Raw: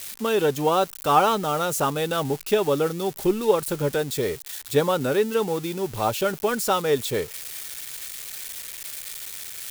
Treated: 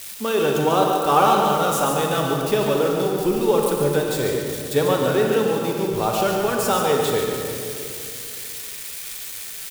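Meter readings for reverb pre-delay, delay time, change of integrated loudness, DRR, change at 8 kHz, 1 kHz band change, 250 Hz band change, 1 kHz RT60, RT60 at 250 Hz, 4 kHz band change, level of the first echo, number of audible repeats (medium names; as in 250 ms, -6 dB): 31 ms, 143 ms, +3.5 dB, -0.5 dB, +3.0 dB, +4.0 dB, +4.0 dB, 2.3 s, 2.9 s, +3.0 dB, -7.0 dB, 1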